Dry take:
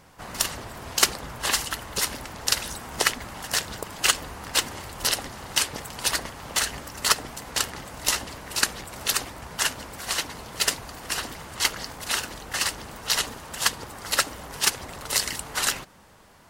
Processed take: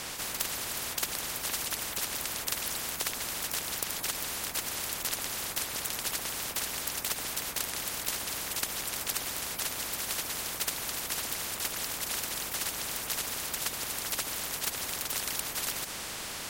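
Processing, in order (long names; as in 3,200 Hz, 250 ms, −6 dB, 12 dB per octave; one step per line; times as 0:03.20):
every bin compressed towards the loudest bin 10 to 1
level −8 dB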